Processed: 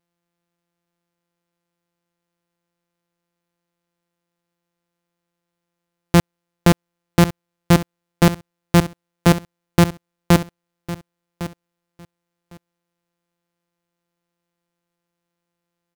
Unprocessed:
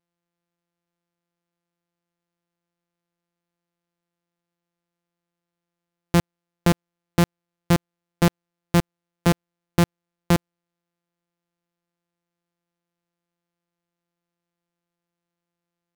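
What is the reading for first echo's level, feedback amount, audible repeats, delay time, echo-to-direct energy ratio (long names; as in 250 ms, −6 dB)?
−15.0 dB, 16%, 2, 1,105 ms, −15.0 dB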